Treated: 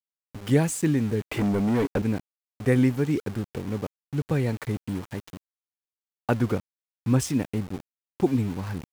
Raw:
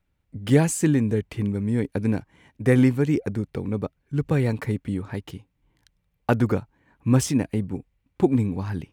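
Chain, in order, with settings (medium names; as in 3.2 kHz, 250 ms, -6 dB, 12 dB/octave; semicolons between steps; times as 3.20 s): 1.21–2.02 s: overdrive pedal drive 29 dB, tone 1.3 kHz, clips at -12.5 dBFS; small samples zeroed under -33 dBFS; trim -3 dB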